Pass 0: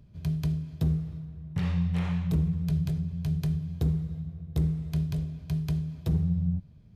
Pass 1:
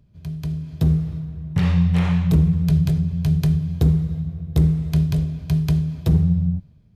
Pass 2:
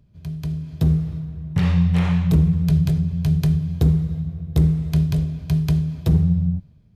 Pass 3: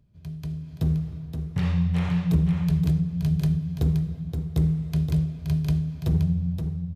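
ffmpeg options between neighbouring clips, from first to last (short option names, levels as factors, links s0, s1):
-af "dynaudnorm=f=150:g=9:m=3.98,volume=0.794"
-af anull
-af "aecho=1:1:523:0.447,volume=0.501"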